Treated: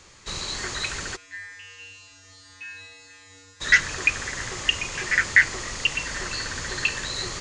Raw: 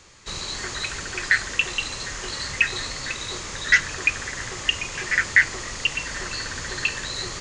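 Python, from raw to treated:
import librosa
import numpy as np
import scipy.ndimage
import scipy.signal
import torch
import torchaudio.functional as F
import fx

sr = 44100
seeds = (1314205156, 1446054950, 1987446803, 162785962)

y = fx.comb_fb(x, sr, f0_hz=95.0, decay_s=1.3, harmonics='odd', damping=0.0, mix_pct=100, at=(1.15, 3.6), fade=0.02)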